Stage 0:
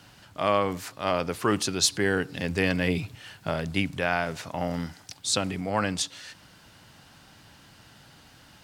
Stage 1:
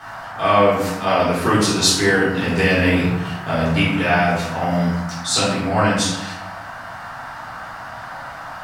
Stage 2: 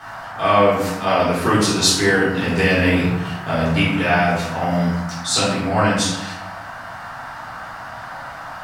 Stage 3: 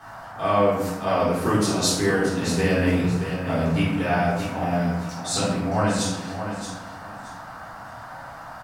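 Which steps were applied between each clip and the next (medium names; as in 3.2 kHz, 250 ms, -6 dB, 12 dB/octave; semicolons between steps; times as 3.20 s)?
band noise 630–1700 Hz -43 dBFS; simulated room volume 250 m³, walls mixed, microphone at 3.7 m; trim -1.5 dB
no audible change
peaking EQ 2.6 kHz -7 dB 2.3 oct; on a send: feedback delay 625 ms, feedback 23%, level -9 dB; on the sum: trim -3.5 dB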